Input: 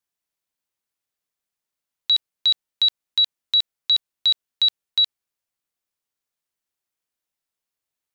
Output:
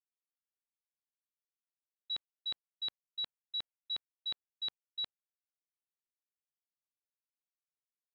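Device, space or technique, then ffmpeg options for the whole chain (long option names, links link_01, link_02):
hearing-loss simulation: -af "lowpass=1700,agate=range=-33dB:threshold=-32dB:ratio=3:detection=peak,volume=-4dB"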